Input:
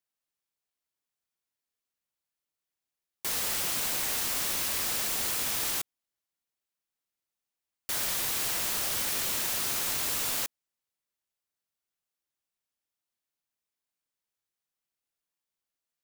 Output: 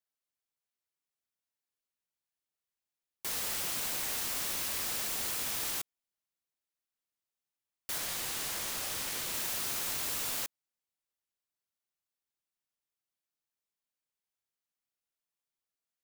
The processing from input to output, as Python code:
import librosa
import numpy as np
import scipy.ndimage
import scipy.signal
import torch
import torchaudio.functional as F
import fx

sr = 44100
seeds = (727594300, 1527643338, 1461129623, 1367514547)

y = fx.doppler_dist(x, sr, depth_ms=0.39, at=(7.98, 9.34))
y = y * librosa.db_to_amplitude(-4.5)